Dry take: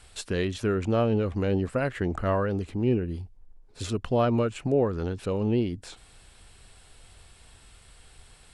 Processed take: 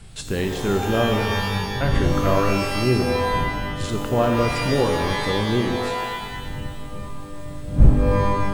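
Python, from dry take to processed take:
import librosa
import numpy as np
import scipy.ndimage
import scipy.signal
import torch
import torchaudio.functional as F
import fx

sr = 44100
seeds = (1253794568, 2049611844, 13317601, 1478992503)

y = fx.dmg_wind(x, sr, seeds[0], corner_hz=99.0, level_db=-29.0)
y = fx.cheby2_lowpass(y, sr, hz=780.0, order=4, stop_db=70, at=(1.21, 1.81))
y = fx.rev_shimmer(y, sr, seeds[1], rt60_s=1.5, semitones=12, shimmer_db=-2, drr_db=4.5)
y = y * librosa.db_to_amplitude(2.5)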